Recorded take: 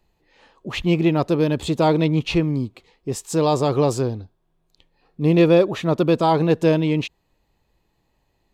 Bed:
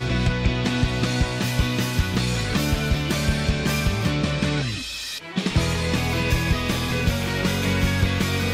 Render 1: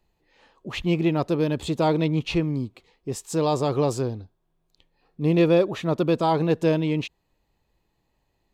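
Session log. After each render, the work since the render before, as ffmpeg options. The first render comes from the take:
ffmpeg -i in.wav -af "volume=-4dB" out.wav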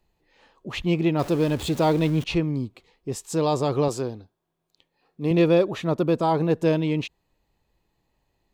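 ffmpeg -i in.wav -filter_complex "[0:a]asettb=1/sr,asplit=3[link_01][link_02][link_03];[link_01]atrim=end=1.194[link_04];[link_02]atrim=start=1.19:end=2.24,asetpts=PTS-STARTPTS,afade=type=in:duration=0.004:curve=qsin,afade=type=out:start_time=1.046:duration=0.004:curve=qsin,aeval=exprs='val(0)+0.5*0.0224*sgn(val(0))':channel_layout=same[link_05];[link_03]atrim=start=2.236[link_06];[link_04][link_05]acrossfade=duration=0.004:curve1=hsin:curve2=qsin[link_07];[link_07][link_06]acrossfade=duration=0.004:curve1=qsin:curve2=hsin,asettb=1/sr,asplit=3[link_08][link_09][link_10];[link_08]atrim=end=3.884[link_11];[link_09]atrim=start=3.88:end=5.31,asetpts=PTS-STARTPTS,afade=type=in:duration=0.004:curve=qsin,afade=type=out:start_time=1.426:duration=0.004:curve=qsin,highpass=frequency=210:poles=1[link_12];[link_10]atrim=start=5.306[link_13];[link_11][link_12]acrossfade=duration=0.004:curve1=hsin:curve2=qsin[link_14];[link_14][link_13]acrossfade=duration=0.004:curve1=qsin:curve2=hsin,asettb=1/sr,asplit=3[link_15][link_16][link_17];[link_15]atrim=end=5.924[link_18];[link_16]atrim=start=5.92:end=6.66,asetpts=PTS-STARTPTS,afade=type=in:duration=0.004:curve=qsin,afade=type=out:start_time=0.736:duration=0.004:curve=qsin,equalizer=frequency=3500:width_type=o:width=1.6:gain=-4.5[link_19];[link_17]atrim=start=6.656[link_20];[link_18][link_19]acrossfade=duration=0.004:curve1=hsin:curve2=qsin[link_21];[link_21][link_20]acrossfade=duration=0.004:curve1=qsin:curve2=hsin" out.wav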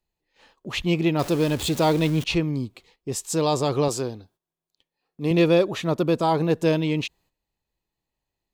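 ffmpeg -i in.wav -af "highshelf=frequency=2600:gain=7,agate=range=-13dB:threshold=-57dB:ratio=16:detection=peak" out.wav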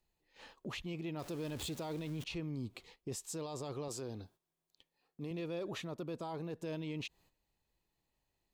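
ffmpeg -i in.wav -af "areverse,acompressor=threshold=-30dB:ratio=10,areverse,alimiter=level_in=9.5dB:limit=-24dB:level=0:latency=1:release=145,volume=-9.5dB" out.wav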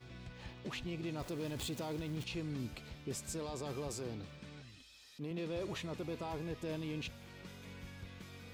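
ffmpeg -i in.wav -i bed.wav -filter_complex "[1:a]volume=-29dB[link_01];[0:a][link_01]amix=inputs=2:normalize=0" out.wav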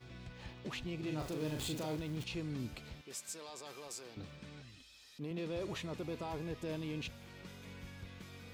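ffmpeg -i in.wav -filter_complex "[0:a]asettb=1/sr,asplit=3[link_01][link_02][link_03];[link_01]atrim=end=0.994[link_04];[link_02]atrim=start=0.99:end=1.96,asetpts=PTS-STARTPTS,afade=type=in:duration=0.004:curve=qsin,afade=type=out:start_time=0.966:duration=0.004:curve=qsin,asplit=2[link_05][link_06];[link_06]adelay=39,volume=-4dB[link_07];[link_05][link_07]amix=inputs=2:normalize=0,atrim=end_sample=42777[link_08];[link_03]atrim=start=1.956[link_09];[link_04][link_08]acrossfade=duration=0.004:curve1=hsin:curve2=qsin[link_10];[link_10][link_09]acrossfade=duration=0.004:curve1=qsin:curve2=hsin,asettb=1/sr,asplit=3[link_11][link_12][link_13];[link_11]atrim=end=3.014[link_14];[link_12]atrim=start=3.01:end=4.17,asetpts=PTS-STARTPTS,afade=type=in:duration=0.004:curve=qsin,afade=type=out:start_time=1.156:duration=0.004:curve=qsin,highpass=frequency=1200:poles=1[link_15];[link_13]atrim=start=4.166[link_16];[link_14][link_15]acrossfade=duration=0.004:curve1=hsin:curve2=qsin[link_17];[link_17][link_16]acrossfade=duration=0.004:curve1=qsin:curve2=hsin" out.wav

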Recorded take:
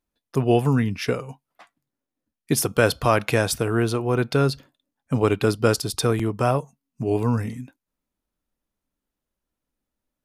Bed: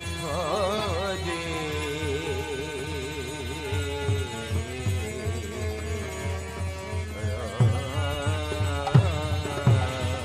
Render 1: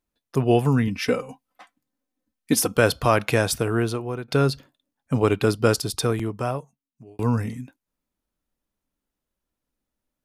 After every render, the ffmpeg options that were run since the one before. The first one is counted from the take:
ffmpeg -i in.wav -filter_complex "[0:a]asettb=1/sr,asplit=3[link_01][link_02][link_03];[link_01]atrim=end=0.874[link_04];[link_02]atrim=start=0.87:end=2.76,asetpts=PTS-STARTPTS,afade=type=in:duration=0.004:curve=qsin,afade=type=out:start_time=1.886:duration=0.004:curve=qsin,aecho=1:1:3.9:0.65,atrim=end_sample=83349[link_05];[link_03]atrim=start=2.756[link_06];[link_04][link_05]acrossfade=duration=0.004:curve1=hsin:curve2=qsin[link_07];[link_07][link_06]acrossfade=duration=0.004:curve1=qsin:curve2=hsin,asplit=3[link_08][link_09][link_10];[link_08]atrim=end=4.28,asetpts=PTS-STARTPTS,afade=type=out:start_time=3.53:duration=0.75:curve=qsin:silence=0.141254[link_11];[link_09]atrim=start=4.28:end=7.19,asetpts=PTS-STARTPTS,afade=type=in:duration=0.004:curve=hsin:silence=0.141254,afade=type=out:start_time=1.55:duration=1.36[link_12];[link_10]atrim=start=7.19,asetpts=PTS-STARTPTS,afade=type=in:duration=0.004:curve=hsin[link_13];[link_11][link_12][link_13]concat=n=3:v=0:a=1" out.wav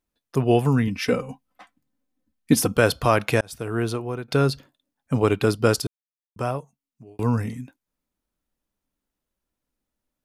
ffmpeg -i in.wav -filter_complex "[0:a]asettb=1/sr,asplit=3[link_01][link_02][link_03];[link_01]atrim=end=1.124[link_04];[link_02]atrim=start=1.12:end=2.78,asetpts=PTS-STARTPTS,afade=type=in:duration=0.004:curve=qsin,afade=type=out:start_time=1.656:duration=0.004:curve=qsin,bass=frequency=250:gain=8,treble=frequency=4000:gain=-2[link_05];[link_03]atrim=start=2.776[link_06];[link_04][link_05]acrossfade=duration=0.004:curve1=hsin:curve2=qsin[link_07];[link_07][link_06]acrossfade=duration=0.004:curve1=qsin:curve2=hsin,asplit=4[link_08][link_09][link_10][link_11];[link_08]atrim=end=3.41,asetpts=PTS-STARTPTS,afade=type=out:start_time=3.406:duration=0.004:curve=hsin[link_12];[link_09]atrim=start=3.41:end=5.87,asetpts=PTS-STARTPTS,afade=type=in:duration=0.49,afade=type=out:start_time=2.456:duration=0.004:curve=hsin[link_13];[link_10]atrim=start=5.87:end=6.36,asetpts=PTS-STARTPTS,volume=0[link_14];[link_11]atrim=start=6.36,asetpts=PTS-STARTPTS,afade=type=in:duration=0.004:curve=hsin[link_15];[link_12][link_13][link_14][link_15]concat=n=4:v=0:a=1" out.wav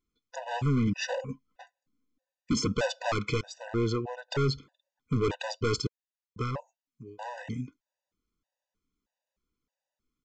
ffmpeg -i in.wav -af "aresample=16000,volume=22.5dB,asoftclip=hard,volume=-22.5dB,aresample=44100,afftfilt=real='re*gt(sin(2*PI*1.6*pts/sr)*(1-2*mod(floor(b*sr/1024/500),2)),0)':imag='im*gt(sin(2*PI*1.6*pts/sr)*(1-2*mod(floor(b*sr/1024/500),2)),0)':win_size=1024:overlap=0.75" out.wav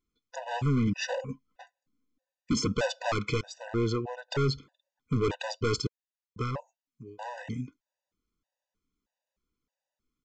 ffmpeg -i in.wav -af anull out.wav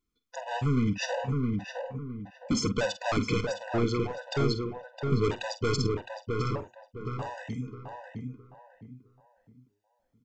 ffmpeg -i in.wav -filter_complex "[0:a]asplit=2[link_01][link_02];[link_02]adelay=47,volume=-12dB[link_03];[link_01][link_03]amix=inputs=2:normalize=0,asplit=2[link_04][link_05];[link_05]adelay=662,lowpass=frequency=1500:poles=1,volume=-3dB,asplit=2[link_06][link_07];[link_07]adelay=662,lowpass=frequency=1500:poles=1,volume=0.34,asplit=2[link_08][link_09];[link_09]adelay=662,lowpass=frequency=1500:poles=1,volume=0.34,asplit=2[link_10][link_11];[link_11]adelay=662,lowpass=frequency=1500:poles=1,volume=0.34[link_12];[link_06][link_08][link_10][link_12]amix=inputs=4:normalize=0[link_13];[link_04][link_13]amix=inputs=2:normalize=0" out.wav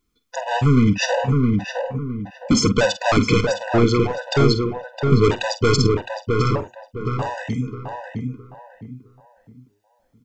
ffmpeg -i in.wav -af "volume=11dB" out.wav

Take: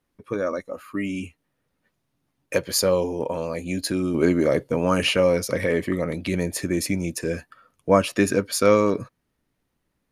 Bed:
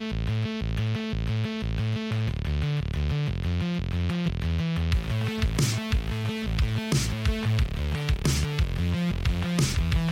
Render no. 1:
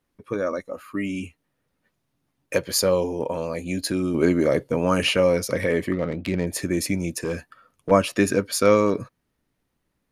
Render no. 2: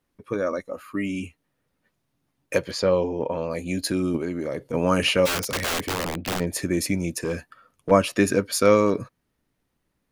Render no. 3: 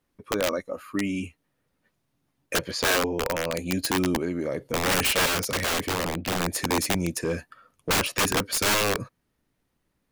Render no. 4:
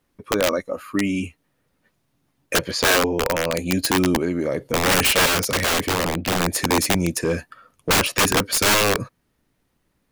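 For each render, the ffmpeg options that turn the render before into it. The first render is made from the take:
ffmpeg -i in.wav -filter_complex "[0:a]asplit=3[link_01][link_02][link_03];[link_01]afade=type=out:start_time=5.92:duration=0.02[link_04];[link_02]adynamicsmooth=sensitivity=3:basefreq=1400,afade=type=in:start_time=5.92:duration=0.02,afade=type=out:start_time=6.46:duration=0.02[link_05];[link_03]afade=type=in:start_time=6.46:duration=0.02[link_06];[link_04][link_05][link_06]amix=inputs=3:normalize=0,asettb=1/sr,asplit=3[link_07][link_08][link_09];[link_07]atrim=end=7.244[link_10];[link_08]atrim=start=7.24:end=7.91,asetpts=PTS-STARTPTS,afade=type=in:duration=0.004:curve=qsin,afade=type=out:start_time=0.666:duration=0.004:curve=qsin,volume=20.5dB,asoftclip=hard,volume=-20.5dB[link_11];[link_09]atrim=start=7.906[link_12];[link_10][link_11]acrossfade=duration=0.004:curve1=hsin:curve2=qsin[link_13];[link_13][link_12]acrossfade=duration=0.004:curve1=qsin:curve2=hsin" out.wav
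ffmpeg -i in.wav -filter_complex "[0:a]asettb=1/sr,asplit=3[link_01][link_02][link_03];[link_01]atrim=end=2.714[link_04];[link_02]atrim=start=2.71:end=3.51,asetpts=PTS-STARTPTS,afade=type=in:duration=0.004:curve=qsin,afade=type=out:start_time=0.796:duration=0.004:curve=qsin,lowpass=3600[link_05];[link_03]atrim=start=3.506[link_06];[link_04][link_05]acrossfade=duration=0.004:curve1=hsin:curve2=qsin[link_07];[link_07][link_06]acrossfade=duration=0.004:curve1=qsin:curve2=hsin,asplit=3[link_08][link_09][link_10];[link_08]afade=type=out:start_time=4.16:duration=0.02[link_11];[link_09]acompressor=threshold=-32dB:ratio=2:attack=3.2:release=140:knee=1:detection=peak,afade=type=in:start_time=4.16:duration=0.02,afade=type=out:start_time=4.73:duration=0.02[link_12];[link_10]afade=type=in:start_time=4.73:duration=0.02[link_13];[link_11][link_12][link_13]amix=inputs=3:normalize=0,asplit=3[link_14][link_15][link_16];[link_14]afade=type=out:start_time=5.25:duration=0.02[link_17];[link_15]aeval=exprs='(mod(10.6*val(0)+1,2)-1)/10.6':channel_layout=same,afade=type=in:start_time=5.25:duration=0.02,afade=type=out:start_time=6.39:duration=0.02[link_18];[link_16]afade=type=in:start_time=6.39:duration=0.02[link_19];[link_17][link_18][link_19]amix=inputs=3:normalize=0" out.wav
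ffmpeg -i in.wav -af "aeval=exprs='(mod(7.08*val(0)+1,2)-1)/7.08':channel_layout=same" out.wav
ffmpeg -i in.wav -af "volume=5.5dB" out.wav

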